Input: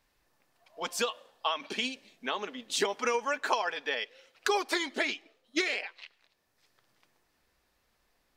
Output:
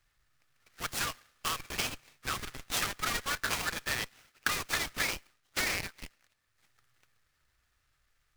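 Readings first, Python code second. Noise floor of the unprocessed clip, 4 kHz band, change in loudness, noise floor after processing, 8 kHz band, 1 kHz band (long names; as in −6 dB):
−74 dBFS, −1.0 dB, −1.5 dB, −76 dBFS, +4.0 dB, −4.5 dB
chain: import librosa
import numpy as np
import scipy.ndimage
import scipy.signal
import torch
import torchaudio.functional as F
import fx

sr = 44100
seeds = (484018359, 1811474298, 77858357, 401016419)

p1 = fx.halfwave_hold(x, sr)
p2 = scipy.signal.sosfilt(scipy.signal.cheby1(5, 1.0, [140.0, 1200.0], 'bandstop', fs=sr, output='sos'), p1)
p3 = fx.schmitt(p2, sr, flips_db=-31.0)
p4 = p2 + (p3 * librosa.db_to_amplitude(-4.0))
p5 = fx.noise_mod_delay(p4, sr, seeds[0], noise_hz=2300.0, depth_ms=0.046)
y = p5 * librosa.db_to_amplitude(-3.0)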